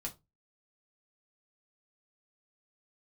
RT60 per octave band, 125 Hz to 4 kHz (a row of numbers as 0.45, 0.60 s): 0.40, 0.25, 0.25, 0.20, 0.15, 0.15 s